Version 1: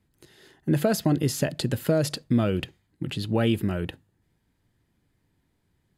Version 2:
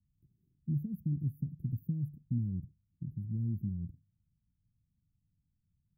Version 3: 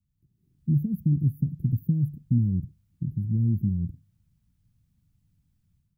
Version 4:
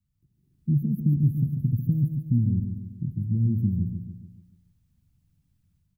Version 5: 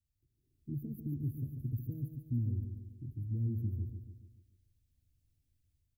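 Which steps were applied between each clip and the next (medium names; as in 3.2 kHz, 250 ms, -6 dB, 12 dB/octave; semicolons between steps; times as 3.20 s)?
inverse Chebyshev band-stop 770–7200 Hz, stop band 70 dB; trim -6 dB
level rider gain up to 10.5 dB
feedback delay 143 ms, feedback 50%, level -7 dB
static phaser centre 430 Hz, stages 4; trim -4.5 dB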